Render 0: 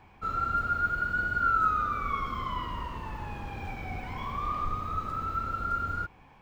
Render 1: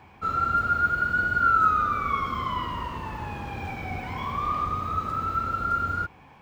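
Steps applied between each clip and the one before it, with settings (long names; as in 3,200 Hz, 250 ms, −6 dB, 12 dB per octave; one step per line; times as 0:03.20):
high-pass filter 64 Hz
level +5 dB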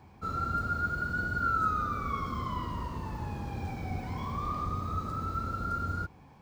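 drawn EQ curve 190 Hz 0 dB, 2,900 Hz −12 dB, 4,400 Hz −2 dB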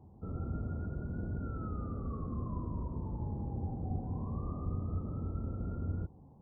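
Gaussian smoothing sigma 12 samples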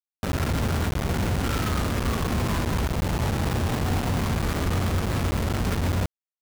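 log-companded quantiser 2 bits
level +4 dB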